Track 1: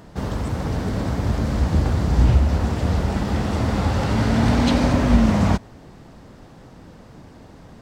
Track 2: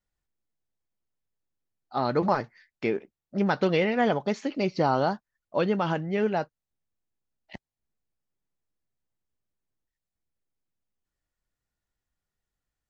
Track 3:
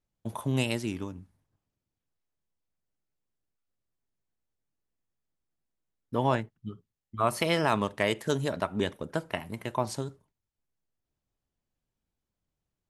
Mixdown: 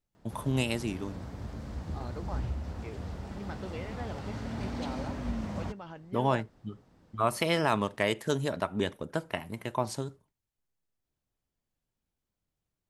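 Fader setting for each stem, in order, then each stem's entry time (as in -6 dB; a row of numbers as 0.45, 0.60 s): -18.5, -18.0, -1.0 dB; 0.15, 0.00, 0.00 s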